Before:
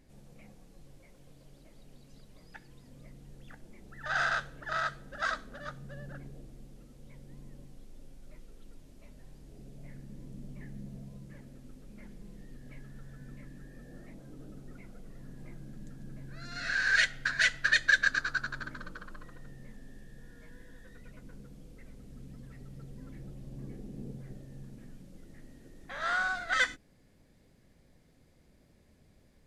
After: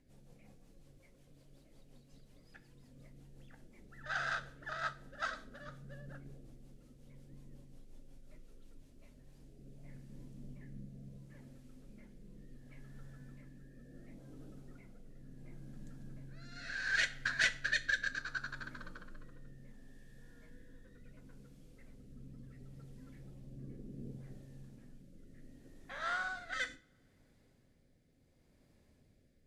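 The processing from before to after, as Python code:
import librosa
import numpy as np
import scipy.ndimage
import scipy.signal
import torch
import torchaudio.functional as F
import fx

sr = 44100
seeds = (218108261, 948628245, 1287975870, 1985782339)

y = fx.rotary_switch(x, sr, hz=5.5, then_hz=0.7, switch_at_s=8.8)
y = fx.rev_double_slope(y, sr, seeds[0], early_s=0.38, late_s=2.4, knee_db=-27, drr_db=11.0)
y = fx.cheby_harmonics(y, sr, harmonics=(2,), levels_db=(-14,), full_scale_db=-11.5)
y = y * 10.0 ** (-4.5 / 20.0)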